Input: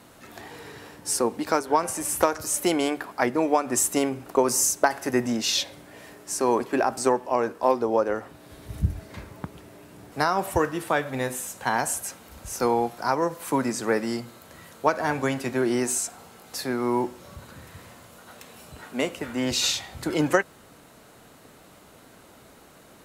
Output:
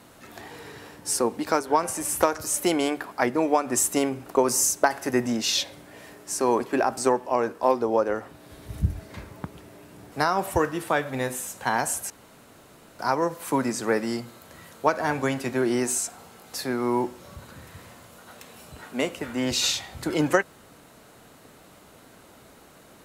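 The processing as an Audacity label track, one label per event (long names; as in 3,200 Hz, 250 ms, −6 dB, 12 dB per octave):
12.100000	12.990000	fill with room tone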